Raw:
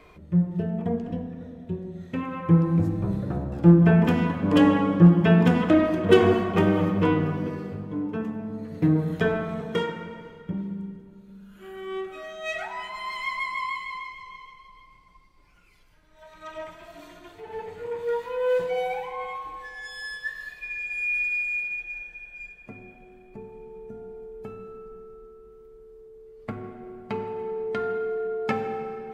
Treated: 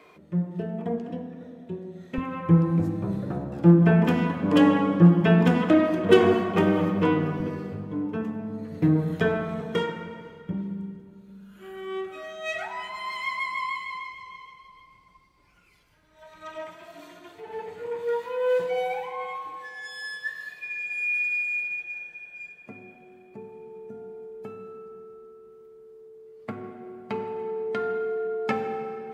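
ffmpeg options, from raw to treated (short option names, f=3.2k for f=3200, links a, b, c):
-af "asetnsamples=n=441:p=0,asendcmd='2.18 highpass f 60;2.7 highpass f 130;7.4 highpass f 57;16.56 highpass f 140',highpass=210"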